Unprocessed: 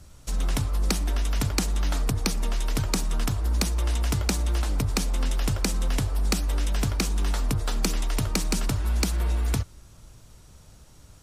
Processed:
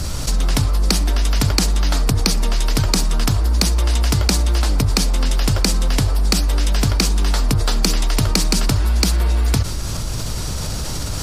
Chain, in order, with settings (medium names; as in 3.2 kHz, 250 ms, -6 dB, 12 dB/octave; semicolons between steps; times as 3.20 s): peaking EQ 4.7 kHz +6.5 dB 0.43 oct; level flattener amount 70%; trim +5.5 dB